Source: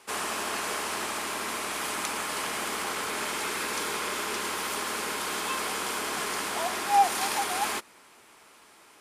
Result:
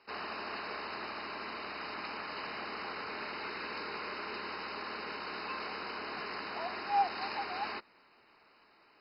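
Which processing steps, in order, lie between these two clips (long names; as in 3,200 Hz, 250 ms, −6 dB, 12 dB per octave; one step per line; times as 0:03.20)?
level −8 dB
MP2 32 kbit/s 48,000 Hz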